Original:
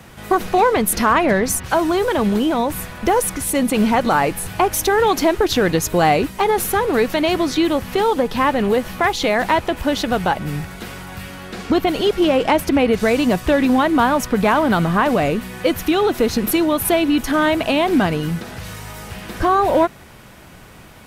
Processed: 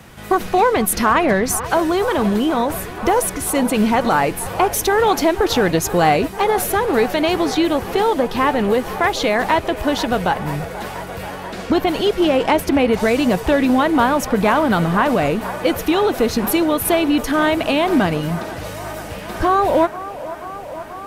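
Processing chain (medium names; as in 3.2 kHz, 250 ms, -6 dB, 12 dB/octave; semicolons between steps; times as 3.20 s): feedback echo behind a band-pass 484 ms, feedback 83%, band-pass 860 Hz, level -14 dB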